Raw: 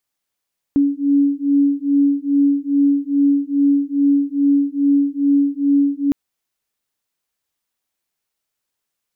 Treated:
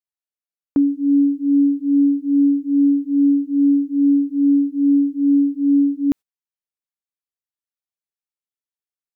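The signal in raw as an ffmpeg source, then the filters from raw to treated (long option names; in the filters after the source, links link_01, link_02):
-f lavfi -i "aevalsrc='0.158*(sin(2*PI*281*t)+sin(2*PI*283.4*t))':duration=5.36:sample_rate=44100"
-af "agate=range=-20dB:threshold=-28dB:ratio=16:detection=peak"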